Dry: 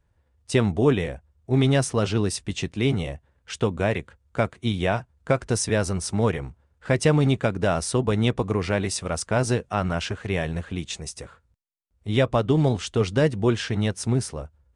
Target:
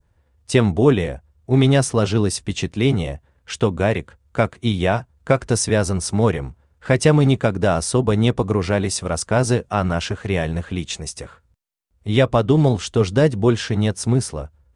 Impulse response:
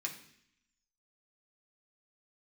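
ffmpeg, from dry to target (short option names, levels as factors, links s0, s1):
-af "adynamicequalizer=threshold=0.00794:dfrequency=2300:dqfactor=1.1:tfrequency=2300:tqfactor=1.1:attack=5:release=100:ratio=0.375:range=2:mode=cutabove:tftype=bell,volume=1.78"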